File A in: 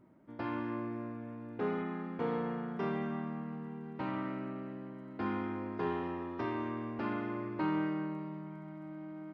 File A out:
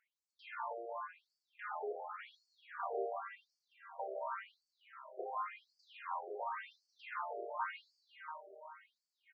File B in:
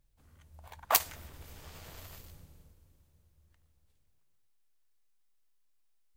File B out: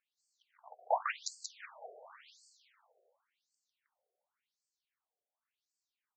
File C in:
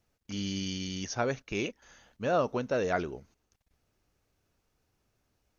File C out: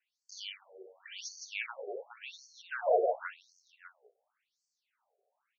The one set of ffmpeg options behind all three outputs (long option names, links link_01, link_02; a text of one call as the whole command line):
ffmpeg -i in.wav -af "equalizer=frequency=4900:width=1:gain=-4.5,aecho=1:1:150|315|496.5|696.2|915.8:0.631|0.398|0.251|0.158|0.1,afftfilt=real='re*between(b*sr/1024,530*pow(6200/530,0.5+0.5*sin(2*PI*0.91*pts/sr))/1.41,530*pow(6200/530,0.5+0.5*sin(2*PI*0.91*pts/sr))*1.41)':imag='im*between(b*sr/1024,530*pow(6200/530,0.5+0.5*sin(2*PI*0.91*pts/sr))/1.41,530*pow(6200/530,0.5+0.5*sin(2*PI*0.91*pts/sr))*1.41)':win_size=1024:overlap=0.75,volume=3dB" out.wav